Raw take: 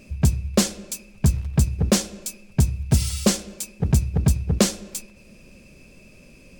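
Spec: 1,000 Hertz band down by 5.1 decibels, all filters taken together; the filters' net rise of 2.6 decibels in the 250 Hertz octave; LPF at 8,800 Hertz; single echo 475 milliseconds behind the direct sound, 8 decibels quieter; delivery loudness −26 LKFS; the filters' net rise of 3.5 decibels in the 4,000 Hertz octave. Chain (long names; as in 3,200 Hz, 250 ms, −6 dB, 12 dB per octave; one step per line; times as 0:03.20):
low-pass filter 8,800 Hz
parametric band 250 Hz +4 dB
parametric band 1,000 Hz −7.5 dB
parametric band 4,000 Hz +5 dB
single-tap delay 475 ms −8 dB
level −4.5 dB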